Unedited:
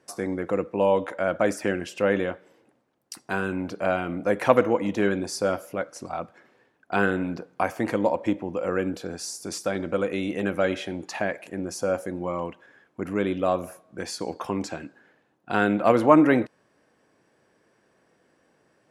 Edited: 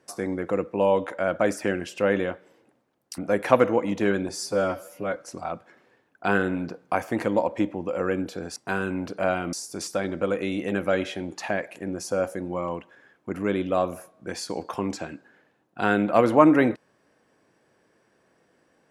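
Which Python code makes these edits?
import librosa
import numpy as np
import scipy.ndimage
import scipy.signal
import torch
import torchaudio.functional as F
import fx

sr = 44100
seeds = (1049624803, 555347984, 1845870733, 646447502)

y = fx.edit(x, sr, fx.move(start_s=3.18, length_s=0.97, to_s=9.24),
    fx.stretch_span(start_s=5.26, length_s=0.58, factor=1.5), tone=tone)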